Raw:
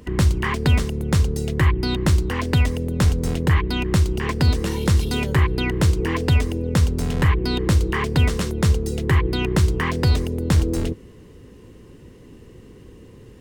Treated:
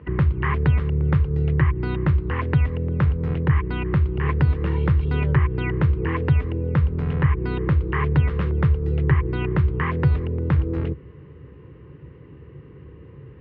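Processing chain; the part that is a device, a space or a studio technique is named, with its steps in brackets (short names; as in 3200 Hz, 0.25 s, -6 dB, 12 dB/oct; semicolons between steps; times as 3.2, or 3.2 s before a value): bass amplifier (compressor 4:1, threshold -19 dBFS, peak gain reduction 6.5 dB; speaker cabinet 71–2400 Hz, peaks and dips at 71 Hz +10 dB, 140 Hz +10 dB, 230 Hz -9 dB, 690 Hz -6 dB, 1200 Hz +3 dB)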